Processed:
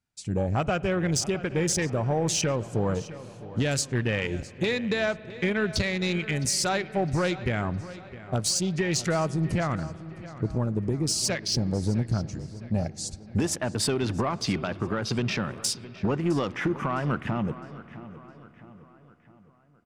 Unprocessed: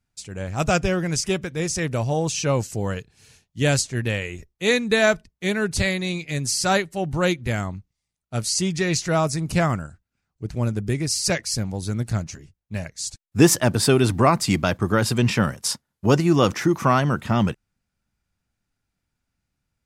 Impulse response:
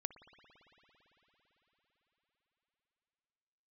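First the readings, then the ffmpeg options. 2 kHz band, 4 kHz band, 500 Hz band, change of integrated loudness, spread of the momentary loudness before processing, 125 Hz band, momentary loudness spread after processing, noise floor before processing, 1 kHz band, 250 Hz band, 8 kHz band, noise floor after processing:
-5.5 dB, -4.0 dB, -5.5 dB, -5.5 dB, 12 LU, -4.5 dB, 10 LU, -81 dBFS, -7.0 dB, -5.0 dB, -4.0 dB, -54 dBFS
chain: -filter_complex "[0:a]afwtdn=0.0224,lowpass=f=11k:w=0.5412,lowpass=f=11k:w=1.3066,lowshelf=f=69:g=-11,acompressor=threshold=-33dB:ratio=6,alimiter=level_in=1.5dB:limit=-24dB:level=0:latency=1:release=331,volume=-1.5dB,asoftclip=type=tanh:threshold=-27.5dB,asplit=2[a][b];[b]adelay=660,lowpass=f=4.7k:p=1,volume=-16dB,asplit=2[c][d];[d]adelay=660,lowpass=f=4.7k:p=1,volume=0.48,asplit=2[e][f];[f]adelay=660,lowpass=f=4.7k:p=1,volume=0.48,asplit=2[g][h];[h]adelay=660,lowpass=f=4.7k:p=1,volume=0.48[i];[a][c][e][g][i]amix=inputs=5:normalize=0,asplit=2[j][k];[1:a]atrim=start_sample=2205[l];[k][l]afir=irnorm=-1:irlink=0,volume=-2dB[m];[j][m]amix=inputs=2:normalize=0,volume=8dB"

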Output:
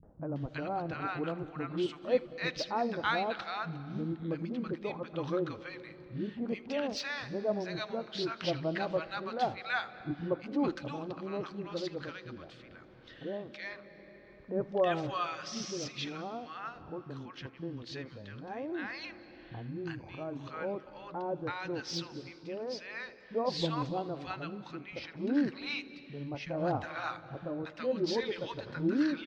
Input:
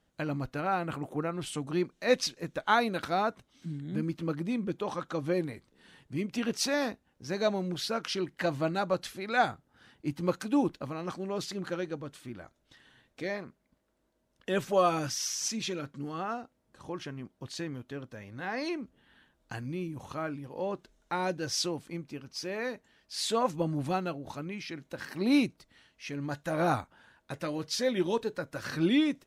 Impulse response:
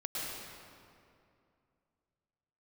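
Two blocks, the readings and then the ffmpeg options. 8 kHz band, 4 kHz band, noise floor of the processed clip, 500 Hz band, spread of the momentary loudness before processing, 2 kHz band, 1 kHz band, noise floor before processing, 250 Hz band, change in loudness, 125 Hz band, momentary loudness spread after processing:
-12.5 dB, -4.0 dB, -54 dBFS, -2.5 dB, 14 LU, -2.5 dB, -4.0 dB, -74 dBFS, -3.5 dB, -3.5 dB, -3.5 dB, 13 LU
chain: -filter_complex "[0:a]asplit=2[a][b];[1:a]atrim=start_sample=2205,adelay=79[c];[b][c]afir=irnorm=-1:irlink=0,volume=-19dB[d];[a][d]amix=inputs=2:normalize=0,acompressor=mode=upward:threshold=-40dB:ratio=2.5,lowpass=f=4.7k:w=0.5412,lowpass=f=4.7k:w=1.3066,deesser=0.8,acrossover=split=210|950[e][f][g];[f]adelay=30[h];[g]adelay=360[i];[e][h][i]amix=inputs=3:normalize=0,volume=-1.5dB"

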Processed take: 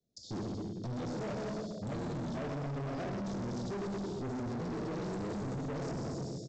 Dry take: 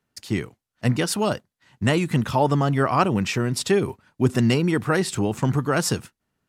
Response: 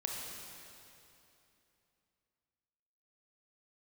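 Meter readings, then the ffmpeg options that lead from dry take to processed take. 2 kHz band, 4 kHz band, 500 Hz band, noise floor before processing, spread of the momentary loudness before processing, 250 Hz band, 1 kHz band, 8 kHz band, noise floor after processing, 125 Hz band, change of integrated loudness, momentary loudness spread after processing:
-20.5 dB, -20.0 dB, -15.0 dB, -83 dBFS, 9 LU, -13.5 dB, -17.5 dB, -21.5 dB, -47 dBFS, -15.0 dB, -15.5 dB, 2 LU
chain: -filter_complex "[0:a]aecho=1:1:127|254|381|508|635:0.335|0.161|0.0772|0.037|0.0178[a];[1:a]atrim=start_sample=2205,asetrate=83790,aresample=44100[b];[a][b]afir=irnorm=-1:irlink=0,flanger=delay=5.8:depth=2.4:regen=-80:speed=0.57:shape=triangular,asuperstop=centerf=1600:order=20:qfactor=0.58,acrossover=split=540|1000[c][d][e];[e]acompressor=threshold=-50dB:ratio=6[f];[c][d][f]amix=inputs=3:normalize=0,alimiter=level_in=2.5dB:limit=-24dB:level=0:latency=1:release=10,volume=-2.5dB,aresample=16000,asoftclip=type=hard:threshold=-39.5dB,aresample=44100,volume=3.5dB"

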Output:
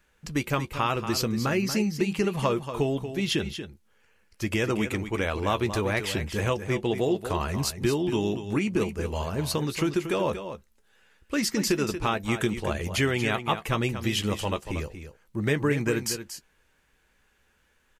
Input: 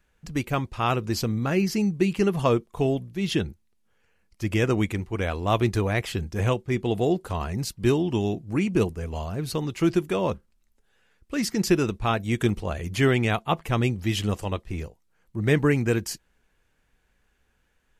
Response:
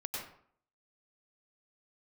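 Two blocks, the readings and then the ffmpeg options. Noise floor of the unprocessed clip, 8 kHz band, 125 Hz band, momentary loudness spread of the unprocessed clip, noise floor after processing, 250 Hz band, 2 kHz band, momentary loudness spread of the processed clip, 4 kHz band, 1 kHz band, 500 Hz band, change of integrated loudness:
-69 dBFS, +3.0 dB, -4.0 dB, 9 LU, -67 dBFS, -2.5 dB, +0.5 dB, 7 LU, +2.0 dB, -1.0 dB, -2.0 dB, -2.0 dB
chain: -filter_complex "[0:a]lowshelf=f=300:g=-6.5,bandreject=f=710:w=12,acompressor=threshold=-28dB:ratio=3,asplit=2[a][b];[b]adelay=14,volume=-13dB[c];[a][c]amix=inputs=2:normalize=0,aecho=1:1:234:0.316,volume=4.5dB"

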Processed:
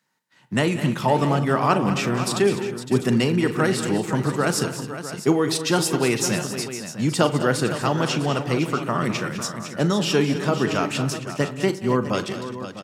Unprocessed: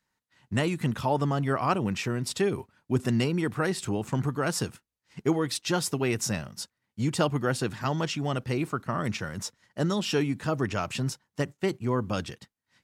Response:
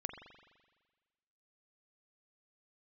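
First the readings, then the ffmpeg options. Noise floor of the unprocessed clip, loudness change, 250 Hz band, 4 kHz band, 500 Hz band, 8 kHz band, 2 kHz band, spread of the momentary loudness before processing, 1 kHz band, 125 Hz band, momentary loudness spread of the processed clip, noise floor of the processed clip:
-83 dBFS, +6.5 dB, +7.0 dB, +7.0 dB, +7.5 dB, +7.0 dB, +7.0 dB, 7 LU, +7.0 dB, +5.0 dB, 8 LU, -37 dBFS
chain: -filter_complex "[0:a]highpass=f=130:w=0.5412,highpass=f=130:w=1.3066,aecho=1:1:40|180|205|262|510|653:0.2|0.112|0.251|0.133|0.266|0.224,asplit=2[a][b];[1:a]atrim=start_sample=2205,atrim=end_sample=6174[c];[b][c]afir=irnorm=-1:irlink=0,volume=-5dB[d];[a][d]amix=inputs=2:normalize=0,volume=3dB"

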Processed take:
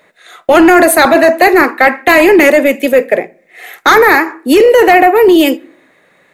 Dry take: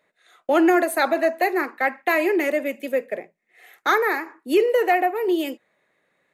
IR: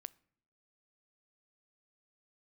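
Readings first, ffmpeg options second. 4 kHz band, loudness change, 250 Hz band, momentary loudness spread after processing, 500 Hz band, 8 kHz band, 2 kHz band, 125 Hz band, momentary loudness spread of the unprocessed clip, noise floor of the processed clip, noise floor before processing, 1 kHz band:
+16.0 dB, +14.0 dB, +13.5 dB, 8 LU, +14.0 dB, +18.0 dB, +14.5 dB, n/a, 10 LU, -50 dBFS, -71 dBFS, +13.5 dB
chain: -filter_complex "[0:a]asplit=2[a][b];[1:a]atrim=start_sample=2205[c];[b][c]afir=irnorm=-1:irlink=0,volume=12.5dB[d];[a][d]amix=inputs=2:normalize=0,apsyclip=10dB,volume=-1.5dB"

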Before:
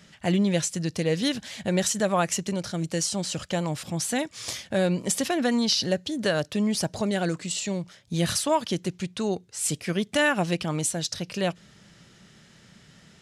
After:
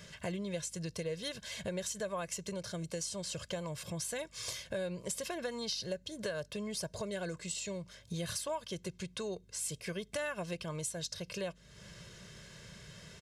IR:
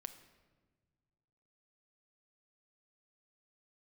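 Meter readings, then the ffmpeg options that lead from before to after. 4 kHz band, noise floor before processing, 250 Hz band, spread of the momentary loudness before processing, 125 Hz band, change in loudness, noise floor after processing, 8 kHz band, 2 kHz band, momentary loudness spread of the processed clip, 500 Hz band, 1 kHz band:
-11.5 dB, -56 dBFS, -16.0 dB, 7 LU, -13.5 dB, -12.5 dB, -61 dBFS, -10.5 dB, -13.0 dB, 14 LU, -11.0 dB, -15.0 dB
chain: -af "highshelf=f=11k:g=3.5,aecho=1:1:1.9:0.74,acompressor=threshold=-41dB:ratio=3,aeval=exprs='val(0)+0.000631*(sin(2*PI*50*n/s)+sin(2*PI*2*50*n/s)/2+sin(2*PI*3*50*n/s)/3+sin(2*PI*4*50*n/s)/4+sin(2*PI*5*50*n/s)/5)':c=same"

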